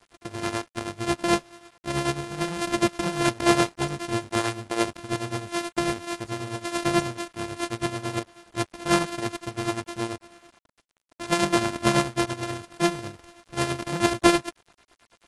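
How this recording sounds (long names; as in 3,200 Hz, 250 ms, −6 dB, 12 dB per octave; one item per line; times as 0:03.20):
a buzz of ramps at a fixed pitch in blocks of 128 samples
tremolo triangle 9.2 Hz, depth 75%
a quantiser's noise floor 10 bits, dither none
AAC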